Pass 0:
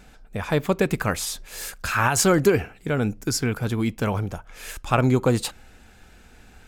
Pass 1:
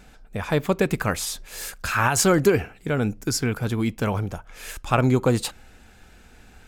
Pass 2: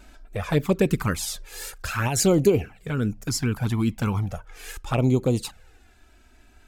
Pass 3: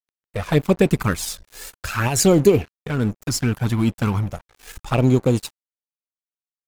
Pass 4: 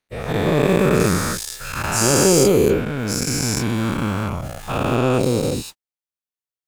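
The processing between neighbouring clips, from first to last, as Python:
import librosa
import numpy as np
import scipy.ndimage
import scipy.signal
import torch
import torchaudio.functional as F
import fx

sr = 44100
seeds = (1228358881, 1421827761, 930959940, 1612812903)

y1 = x
y2 = fx.env_flanger(y1, sr, rest_ms=3.3, full_db=-15.0)
y2 = fx.dynamic_eq(y2, sr, hz=1500.0, q=0.73, threshold_db=-36.0, ratio=4.0, max_db=-4)
y2 = fx.rider(y2, sr, range_db=4, speed_s=2.0)
y3 = np.sign(y2) * np.maximum(np.abs(y2) - 10.0 ** (-38.0 / 20.0), 0.0)
y3 = y3 * 10.0 ** (5.0 / 20.0)
y4 = fx.spec_dilate(y3, sr, span_ms=480)
y4 = y4 * 10.0 ** (-7.0 / 20.0)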